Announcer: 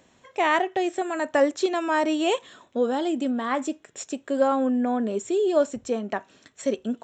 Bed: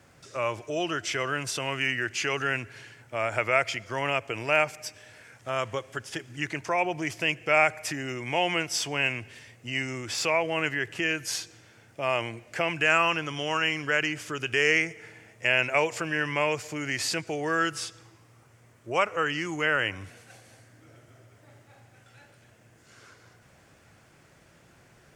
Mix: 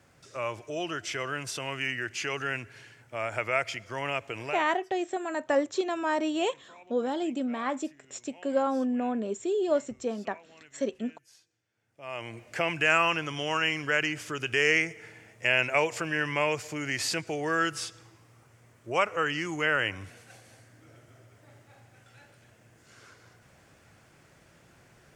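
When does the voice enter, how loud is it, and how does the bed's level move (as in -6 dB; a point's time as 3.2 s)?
4.15 s, -5.0 dB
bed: 4.47 s -4 dB
4.69 s -27.5 dB
11.68 s -27.5 dB
12.4 s -1 dB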